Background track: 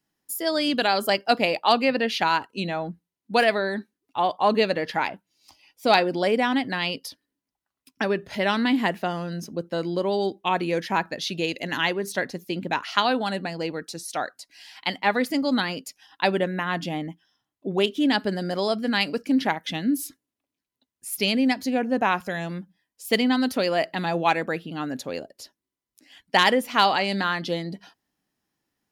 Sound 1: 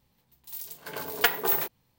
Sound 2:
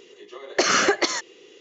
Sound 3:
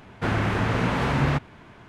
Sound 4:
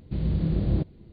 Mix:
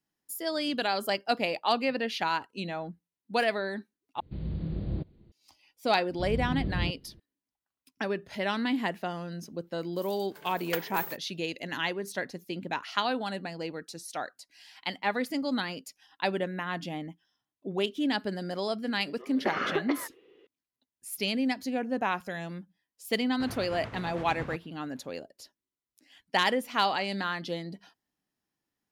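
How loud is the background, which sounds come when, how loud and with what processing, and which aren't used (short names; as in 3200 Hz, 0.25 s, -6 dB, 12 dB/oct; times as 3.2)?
background track -7 dB
4.2 replace with 4 -8.5 dB
6.08 add 4 -7 dB
9.49 add 1 -11.5 dB
18.87 add 2 -7.5 dB + air absorption 460 m
23.18 add 3 -15.5 dB + tremolo 8.9 Hz, depth 53%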